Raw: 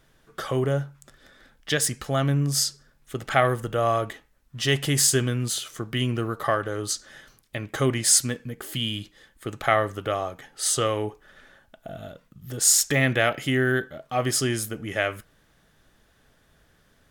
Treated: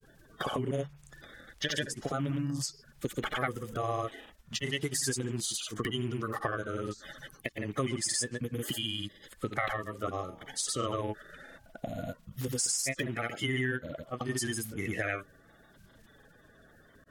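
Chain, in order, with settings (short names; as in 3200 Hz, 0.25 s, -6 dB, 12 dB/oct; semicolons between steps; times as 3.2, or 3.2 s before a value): bin magnitudes rounded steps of 30 dB; compressor 4:1, threshold -34 dBFS, peak gain reduction 16.5 dB; grains 0.1 s, pitch spread up and down by 0 st; gain +4 dB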